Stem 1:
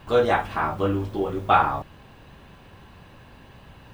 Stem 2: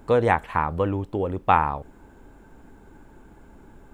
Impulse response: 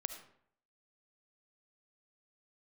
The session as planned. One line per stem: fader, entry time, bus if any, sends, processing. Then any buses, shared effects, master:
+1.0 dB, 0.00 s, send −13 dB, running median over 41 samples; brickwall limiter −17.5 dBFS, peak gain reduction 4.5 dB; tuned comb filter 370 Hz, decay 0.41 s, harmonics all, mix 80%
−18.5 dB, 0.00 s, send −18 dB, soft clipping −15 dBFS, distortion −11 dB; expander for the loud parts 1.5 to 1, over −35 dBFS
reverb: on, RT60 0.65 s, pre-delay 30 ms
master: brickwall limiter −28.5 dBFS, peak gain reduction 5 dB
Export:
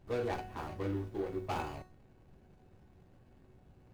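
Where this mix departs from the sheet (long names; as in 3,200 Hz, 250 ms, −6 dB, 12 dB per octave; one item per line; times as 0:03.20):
stem 1: send off
master: missing brickwall limiter −28.5 dBFS, peak gain reduction 5 dB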